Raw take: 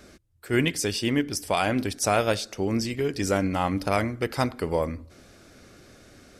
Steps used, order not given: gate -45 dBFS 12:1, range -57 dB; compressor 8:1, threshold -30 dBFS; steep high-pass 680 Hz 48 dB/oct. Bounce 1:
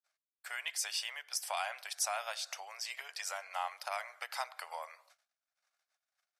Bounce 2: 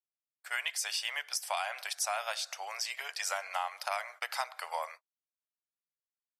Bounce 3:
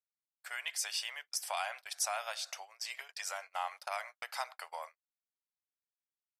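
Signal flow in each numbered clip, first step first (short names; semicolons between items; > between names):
gate > compressor > steep high-pass; steep high-pass > gate > compressor; compressor > steep high-pass > gate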